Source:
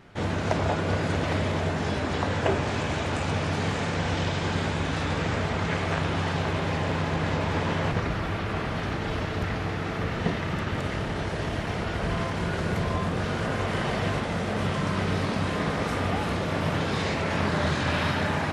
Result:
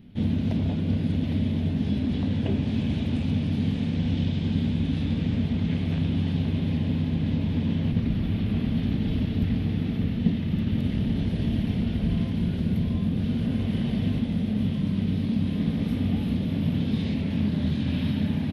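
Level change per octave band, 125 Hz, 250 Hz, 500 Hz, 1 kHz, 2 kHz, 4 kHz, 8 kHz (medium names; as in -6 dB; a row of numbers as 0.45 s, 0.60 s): +3.0 dB, +6.0 dB, -9.5 dB, -17.0 dB, -13.5 dB, -5.5 dB, under -15 dB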